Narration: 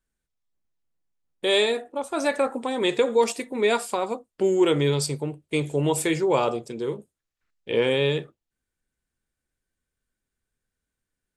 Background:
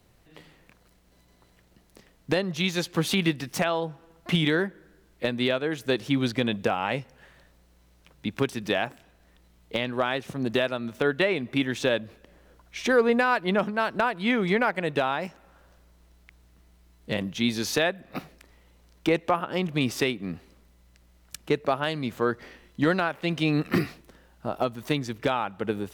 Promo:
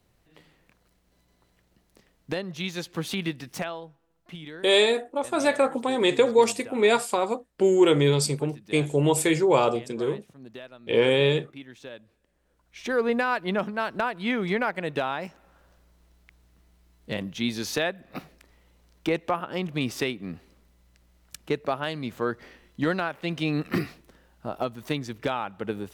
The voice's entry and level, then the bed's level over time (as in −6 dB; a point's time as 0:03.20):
3.20 s, +1.5 dB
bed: 0:03.61 −5.5 dB
0:04.01 −17.5 dB
0:12.34 −17.5 dB
0:13.05 −2.5 dB